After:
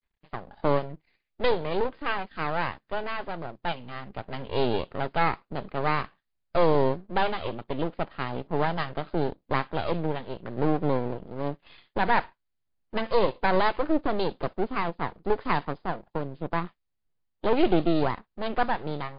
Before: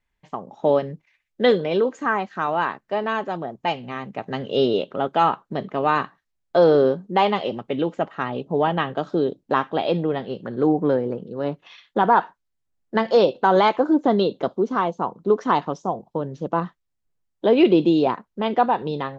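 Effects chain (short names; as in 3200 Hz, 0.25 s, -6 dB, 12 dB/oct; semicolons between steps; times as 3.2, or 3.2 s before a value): half-wave rectifier; gain -1.5 dB; MP3 40 kbps 11025 Hz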